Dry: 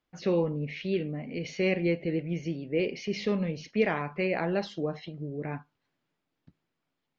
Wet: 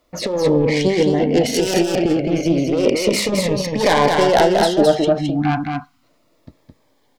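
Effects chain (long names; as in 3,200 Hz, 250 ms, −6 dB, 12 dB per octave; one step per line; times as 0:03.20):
phase distortion by the signal itself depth 0.35 ms
0:05.18–0:06.03: time-frequency box erased 320–700 Hz
soft clipping −21.5 dBFS, distortion −17 dB
0:01.54–0:01.98: high-shelf EQ 4,300 Hz +10.5 dB
0:03.43–0:03.83: comb filter 1.1 ms, depth 45%
compressor whose output falls as the input rises −32 dBFS, ratio −0.5
graphic EQ with 15 bands 160 Hz −10 dB, 630 Hz +9 dB, 2,500 Hz −5 dB
single-tap delay 215 ms −4 dB
boost into a limiter +18.5 dB
phaser whose notches keep moving one way falling 0.32 Hz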